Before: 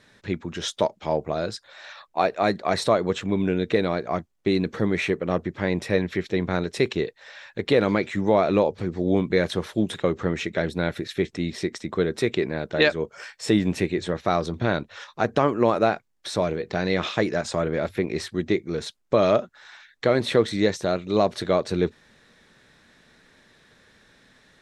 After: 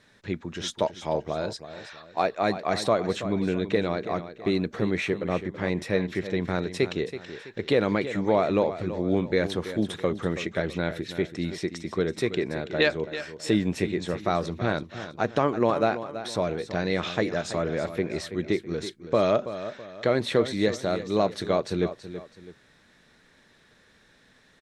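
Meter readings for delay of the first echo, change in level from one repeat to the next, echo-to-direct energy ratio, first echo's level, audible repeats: 328 ms, −8.5 dB, −11.5 dB, −12.0 dB, 2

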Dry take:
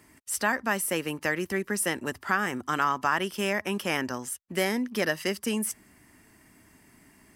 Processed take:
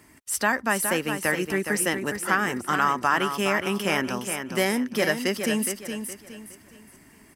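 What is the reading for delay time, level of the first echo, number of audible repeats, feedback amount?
416 ms, −7.5 dB, 3, 33%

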